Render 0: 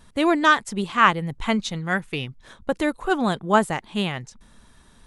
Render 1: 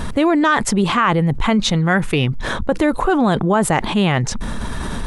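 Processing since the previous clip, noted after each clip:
high-shelf EQ 2,500 Hz −9 dB
boost into a limiter +14 dB
envelope flattener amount 70%
level −6.5 dB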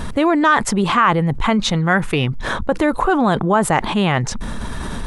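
dynamic equaliser 1,100 Hz, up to +4 dB, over −29 dBFS, Q 0.86
level −1.5 dB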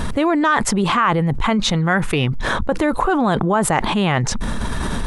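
envelope flattener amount 50%
level −3 dB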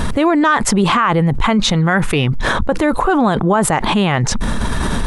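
brickwall limiter −9.5 dBFS, peak gain reduction 8 dB
level +4.5 dB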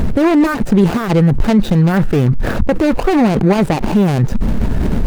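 running median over 41 samples
level +4 dB

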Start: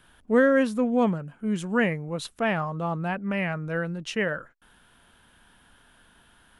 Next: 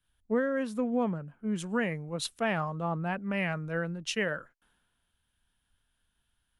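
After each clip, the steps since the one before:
downward compressor 10 to 1, threshold −23 dBFS, peak gain reduction 9.5 dB
multiband upward and downward expander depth 70%
level −2.5 dB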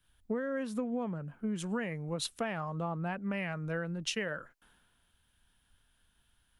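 downward compressor 5 to 1, threshold −38 dBFS, peak gain reduction 14 dB
level +5.5 dB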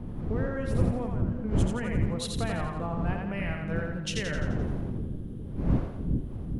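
wind on the microphone 160 Hz −32 dBFS
echo with a time of its own for lows and highs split 420 Hz, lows 408 ms, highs 86 ms, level −3.5 dB

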